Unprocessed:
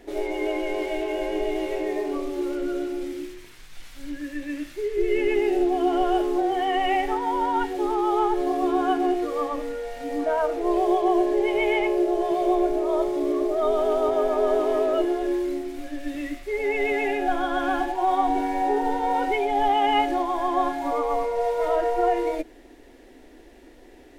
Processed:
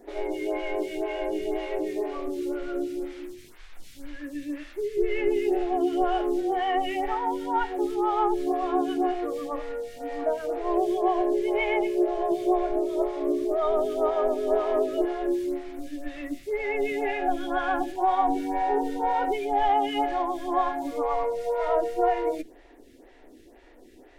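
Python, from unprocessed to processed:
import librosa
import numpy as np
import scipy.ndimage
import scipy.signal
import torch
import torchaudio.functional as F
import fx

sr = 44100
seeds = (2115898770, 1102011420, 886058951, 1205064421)

y = fx.stagger_phaser(x, sr, hz=2.0)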